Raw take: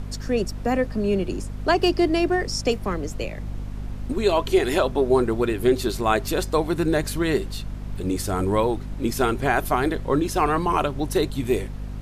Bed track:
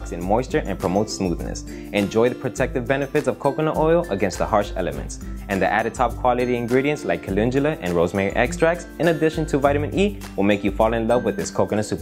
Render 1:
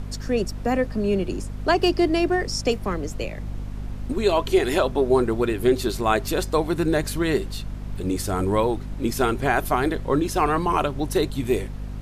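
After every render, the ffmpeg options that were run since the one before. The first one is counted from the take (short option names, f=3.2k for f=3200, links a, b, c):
-af anull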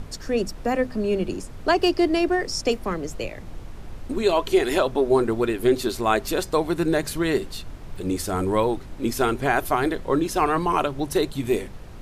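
-af "bandreject=f=50:t=h:w=6,bandreject=f=100:t=h:w=6,bandreject=f=150:t=h:w=6,bandreject=f=200:t=h:w=6,bandreject=f=250:t=h:w=6"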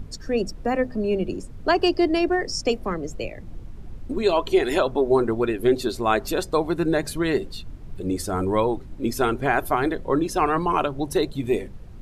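-af "afftdn=nr=10:nf=-38"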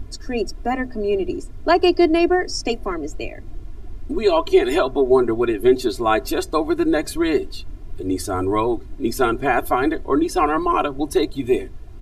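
-af "aecho=1:1:2.9:0.8"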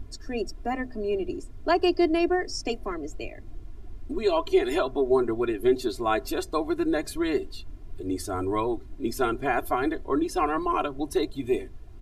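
-af "volume=-7dB"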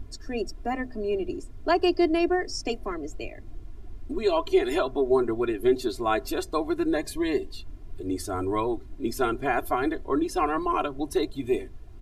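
-filter_complex "[0:a]asettb=1/sr,asplit=3[a][b][c];[a]atrim=end=6.964[d];[b]atrim=start=6.96:end=7.54,asetpts=PTS-STARTPTS,afade=t=in:d=0.004:c=qsin,afade=t=out:st=0.576:d=0.004:c=qsin,asuperstop=centerf=1400:order=20:qfactor=5.8[e];[c]atrim=start=7.536[f];[d][e]acrossfade=d=0.004:c1=hsin:c2=qsin[g];[g][f]acrossfade=d=0.004:c1=qsin:c2=hsin"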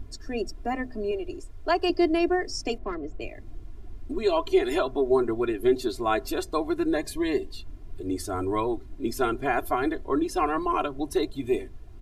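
-filter_complex "[0:a]asettb=1/sr,asplit=3[a][b][c];[a]atrim=end=1.114[d];[b]atrim=start=1.11:end=1.9,asetpts=PTS-STARTPTS,afade=t=in:d=0.004:c=qsin,afade=t=out:st=0.786:d=0.004:c=qsin,equalizer=f=200:w=1.5:g=-14.5[e];[c]atrim=start=1.896[f];[d][e]acrossfade=d=0.004:c1=hsin:c2=qsin[g];[g][f]acrossfade=d=0.004:c1=qsin:c2=hsin,asettb=1/sr,asplit=3[h][i][j];[h]atrim=end=2.784[k];[i]atrim=start=2.78:end=3.22,asetpts=PTS-STARTPTS,afade=t=in:d=0.004:c=qsin,afade=t=out:st=0.436:d=0.004:c=qsin,adynamicsmooth=sensitivity=3:basefreq=2.7k[l];[j]atrim=start=3.216[m];[k][l]acrossfade=d=0.004:c1=hsin:c2=qsin[n];[n][m]acrossfade=d=0.004:c1=qsin:c2=hsin"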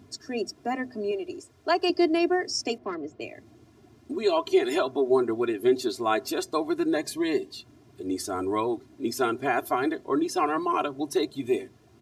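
-af "highpass=f=120:w=0.5412,highpass=f=120:w=1.3066,equalizer=f=5.8k:t=o:w=0.96:g=5"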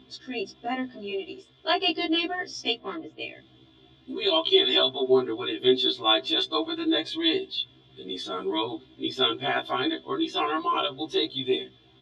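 -af "lowpass=f=3.4k:t=q:w=16,afftfilt=real='re*1.73*eq(mod(b,3),0)':imag='im*1.73*eq(mod(b,3),0)':win_size=2048:overlap=0.75"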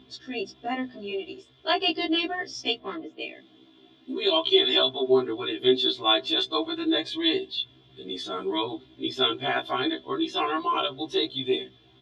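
-filter_complex "[0:a]asettb=1/sr,asplit=3[a][b][c];[a]atrim=end=3.024[d];[b]atrim=start=3.02:end=4.3,asetpts=PTS-STARTPTS,afade=t=in:d=0.004:c=qsin,afade=t=out:st=1.276:d=0.004:c=qsin,lowshelf=f=150:t=q:w=1.5:g=-13[e];[c]atrim=start=4.296[f];[d][e]acrossfade=d=0.004:c1=hsin:c2=qsin[g];[g][f]acrossfade=d=0.004:c1=qsin:c2=hsin"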